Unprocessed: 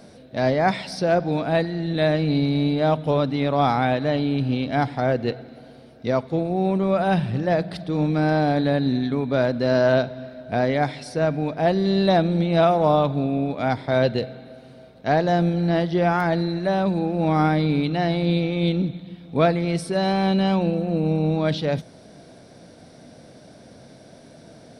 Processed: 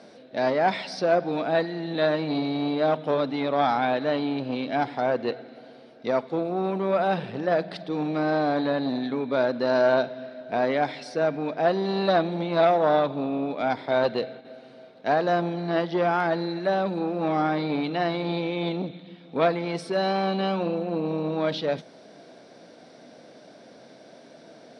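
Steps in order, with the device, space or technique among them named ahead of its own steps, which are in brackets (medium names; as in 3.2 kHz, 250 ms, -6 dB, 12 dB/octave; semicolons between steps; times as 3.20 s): public-address speaker with an overloaded transformer (transformer saturation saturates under 560 Hz; band-pass 280–5300 Hz); 14.04–14.45 s: gate -40 dBFS, range -7 dB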